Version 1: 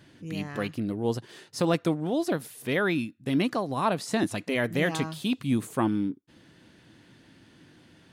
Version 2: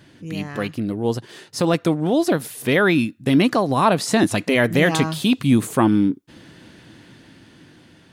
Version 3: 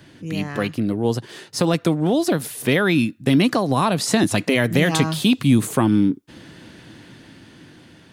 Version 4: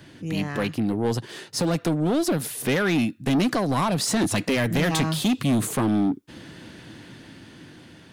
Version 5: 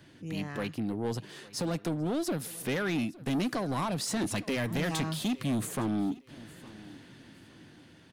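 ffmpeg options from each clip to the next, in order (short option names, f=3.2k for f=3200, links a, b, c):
-filter_complex "[0:a]dynaudnorm=f=570:g=7:m=6.5dB,asplit=2[a][b];[b]alimiter=limit=-16dB:level=0:latency=1:release=127,volume=-1.5dB[c];[a][c]amix=inputs=2:normalize=0"
-filter_complex "[0:a]acrossover=split=200|3000[a][b][c];[b]acompressor=threshold=-19dB:ratio=6[d];[a][d][c]amix=inputs=3:normalize=0,volume=2.5dB"
-af "asoftclip=type=tanh:threshold=-17dB"
-af "aecho=1:1:861|1722:0.0944|0.0227,volume=-8.5dB"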